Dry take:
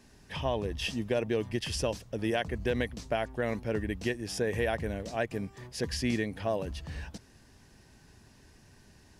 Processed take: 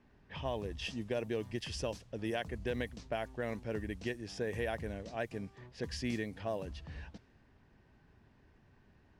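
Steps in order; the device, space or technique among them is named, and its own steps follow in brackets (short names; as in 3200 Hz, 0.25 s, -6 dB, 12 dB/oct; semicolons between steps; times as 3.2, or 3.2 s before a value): cassette deck with a dynamic noise filter (white noise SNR 31 dB; low-pass opened by the level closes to 1900 Hz, open at -26.5 dBFS); gain -6.5 dB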